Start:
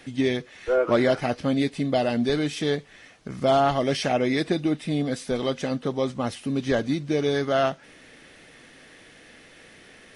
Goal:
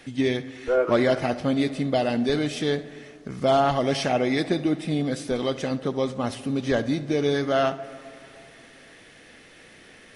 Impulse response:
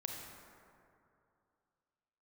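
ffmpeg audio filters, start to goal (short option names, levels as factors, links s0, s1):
-filter_complex "[0:a]asplit=2[s0][s1];[1:a]atrim=start_sample=2205,highshelf=f=4800:g=-10,adelay=70[s2];[s1][s2]afir=irnorm=-1:irlink=0,volume=0.237[s3];[s0][s3]amix=inputs=2:normalize=0"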